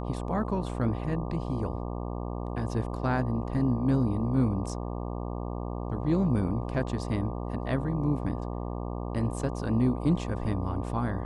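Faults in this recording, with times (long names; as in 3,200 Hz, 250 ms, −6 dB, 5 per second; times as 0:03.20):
mains buzz 60 Hz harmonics 20 −34 dBFS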